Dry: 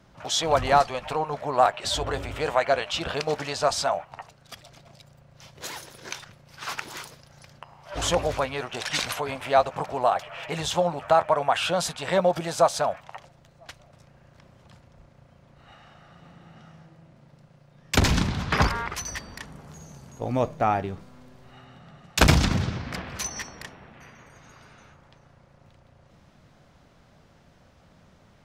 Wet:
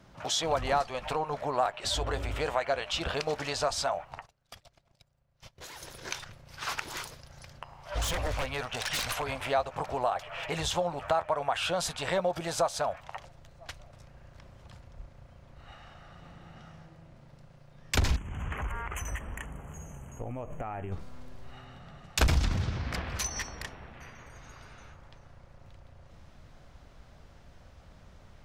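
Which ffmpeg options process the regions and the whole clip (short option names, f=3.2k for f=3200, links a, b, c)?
-filter_complex "[0:a]asettb=1/sr,asplit=3[a][b][c];[a]atrim=end=4.194[d];[b]atrim=start=4.19:end=5.82,asetpts=PTS-STARTPTS,afade=t=in:d=0.004:c=qsin,afade=t=out:st=1.626:d=0.004:c=qsin,agate=range=-21dB:threshold=-48dB:ratio=16:release=100:detection=peak,acompressor=threshold=-42dB:ratio=6:attack=3.2:release=140:knee=1:detection=peak[e];[c]atrim=start=5.816[f];[d][e]acrossfade=d=0.004:c1=hsin:c2=qsin[g];[g][f]acrossfade=d=0.004:c1=qsin:c2=hsin,asettb=1/sr,asplit=3[h][i][j];[h]atrim=end=7.934[k];[i]atrim=start=7.93:end=9.4,asetpts=PTS-STARTPTS,afade=t=in:d=0.004:c=qsin,afade=t=out:st=1.466:d=0.004:c=qsin,equalizer=f=350:t=o:w=0.28:g=-13.5,aeval=exprs='0.0708*(abs(mod(val(0)/0.0708+3,4)-2)-1)':c=same[l];[j]atrim=start=9.396[m];[k][l]acrossfade=d=0.004:c1=hsin:c2=qsin[n];[n][m]acrossfade=d=0.004:c1=qsin:c2=hsin,asettb=1/sr,asplit=3[o][p][q];[o]atrim=end=18.164[r];[p]atrim=start=18.16:end=20.92,asetpts=PTS-STARTPTS,afade=t=in:d=0.004:c=qsin,afade=t=out:st=2.756:d=0.004:c=qsin,asuperstop=centerf=4500:order=12:qfactor=1.4,acompressor=threshold=-32dB:ratio=16:attack=3.2:release=140:knee=1:detection=peak[s];[q]atrim=start=20.916[t];[r][s]acrossfade=d=0.004:c1=hsin:c2=qsin[u];[u][t]acrossfade=d=0.004:c1=qsin:c2=hsin,asubboost=boost=4:cutoff=76,acompressor=threshold=-30dB:ratio=2"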